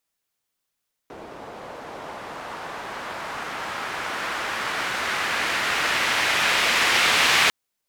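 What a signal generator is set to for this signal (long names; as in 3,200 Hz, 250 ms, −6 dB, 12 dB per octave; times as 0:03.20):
filter sweep on noise pink, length 6.40 s bandpass, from 540 Hz, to 2,400 Hz, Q 1.1, linear, gain ramp +22.5 dB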